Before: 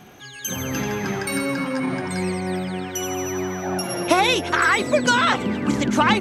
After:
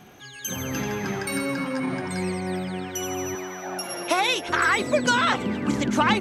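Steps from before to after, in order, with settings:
0:03.35–0:04.49: high-pass filter 560 Hz 6 dB per octave
level −3 dB

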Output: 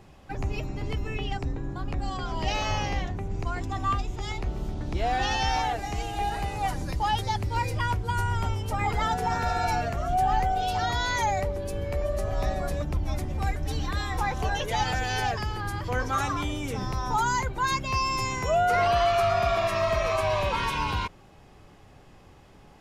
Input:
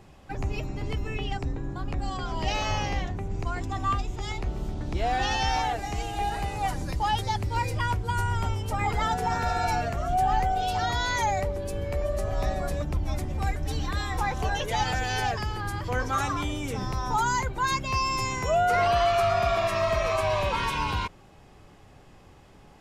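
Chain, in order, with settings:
parametric band 7,900 Hz −2.5 dB 0.27 octaves

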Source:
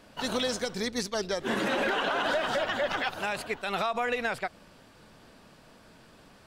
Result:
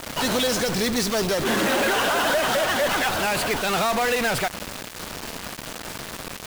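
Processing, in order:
in parallel at −12 dB: fuzz pedal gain 57 dB, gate −52 dBFS
on the sum: bit reduction 5 bits

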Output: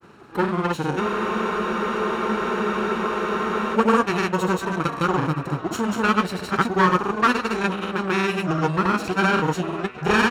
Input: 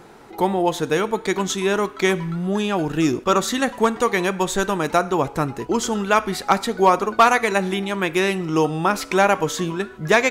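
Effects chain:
lower of the sound and its delayed copy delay 0.73 ms
high-pass filter 75 Hz 12 dB per octave
high-shelf EQ 4,500 Hz −9 dB
double-tracking delay 33 ms −7 dB
echo through a band-pass that steps 423 ms, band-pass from 540 Hz, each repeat 0.7 octaves, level −8 dB
granular cloud, pitch spread up and down by 0 semitones
frozen spectrum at 0:01.03, 2.72 s

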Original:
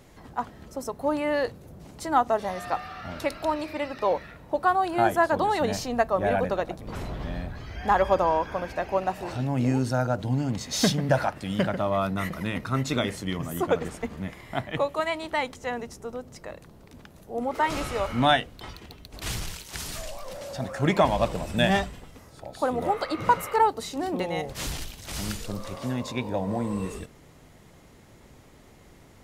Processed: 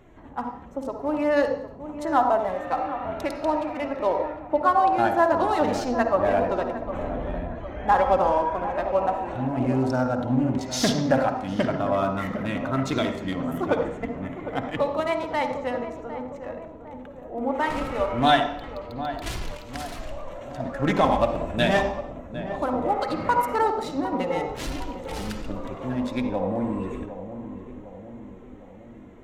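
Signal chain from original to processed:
adaptive Wiener filter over 9 samples
flanger 0.93 Hz, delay 2.8 ms, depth 1.2 ms, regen +41%
feedback echo with a low-pass in the loop 756 ms, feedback 59%, low-pass 1,100 Hz, level −10 dB
on a send at −6 dB: convolution reverb, pre-delay 47 ms
on the sum: highs frequency-modulated by the lows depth 0.13 ms
level +4.5 dB

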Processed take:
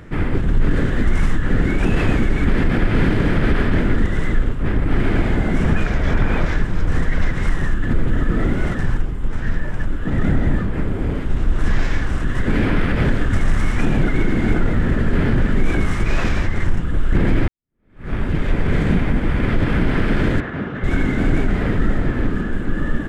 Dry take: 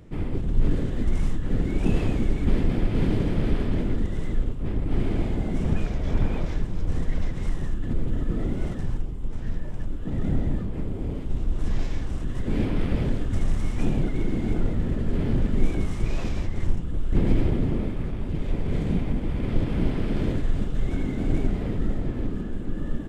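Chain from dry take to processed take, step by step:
parametric band 1,600 Hz +12.5 dB 1.1 octaves
brickwall limiter −15 dBFS, peak gain reduction 6.5 dB
0:17.48–0:18.12: fade in exponential
0:20.40–0:20.84: band-pass filter 150–2,400 Hz
level +8 dB

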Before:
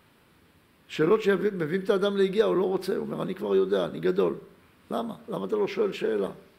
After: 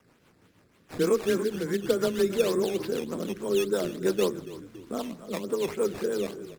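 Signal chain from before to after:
frequency shifter +15 Hz
echo with shifted repeats 280 ms, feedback 45%, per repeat −44 Hz, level −14 dB
on a send at −22 dB: convolution reverb RT60 1.2 s, pre-delay 6 ms
on the sum: sample-and-hold swept by an LFO 10×, swing 100% 3.4 Hz
rotating-speaker cabinet horn 6.3 Hz

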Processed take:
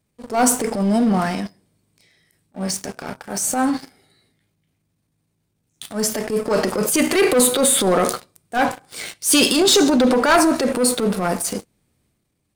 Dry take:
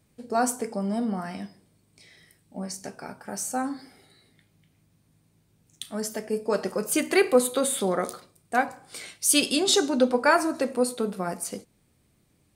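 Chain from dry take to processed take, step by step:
leveller curve on the samples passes 3
transient designer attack −10 dB, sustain +5 dB

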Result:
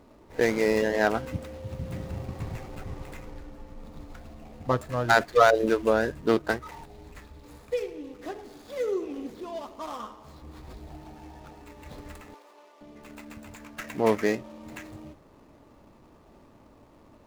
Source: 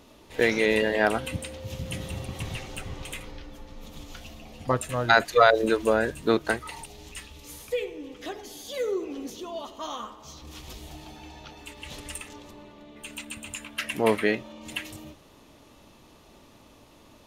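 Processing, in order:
running median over 15 samples
0:12.34–0:12.81: Bessel high-pass filter 640 Hz, order 4

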